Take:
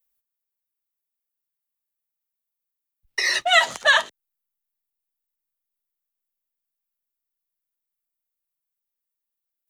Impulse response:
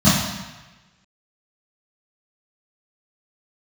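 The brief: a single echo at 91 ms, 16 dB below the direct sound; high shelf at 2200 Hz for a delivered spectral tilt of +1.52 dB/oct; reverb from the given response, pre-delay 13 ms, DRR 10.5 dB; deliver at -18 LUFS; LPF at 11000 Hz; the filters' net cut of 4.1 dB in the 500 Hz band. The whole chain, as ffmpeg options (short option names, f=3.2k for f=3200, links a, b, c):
-filter_complex "[0:a]lowpass=11k,equalizer=f=500:t=o:g=-7,highshelf=f=2.2k:g=3,aecho=1:1:91:0.158,asplit=2[a][b];[1:a]atrim=start_sample=2205,adelay=13[c];[b][c]afir=irnorm=-1:irlink=0,volume=-33dB[d];[a][d]amix=inputs=2:normalize=0,volume=-0.5dB"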